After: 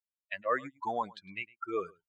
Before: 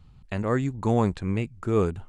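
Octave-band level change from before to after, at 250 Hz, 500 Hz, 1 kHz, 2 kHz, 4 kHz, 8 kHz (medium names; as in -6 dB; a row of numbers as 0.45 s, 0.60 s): -18.5 dB, -9.5 dB, -2.0 dB, 0.0 dB, -4.0 dB, under -15 dB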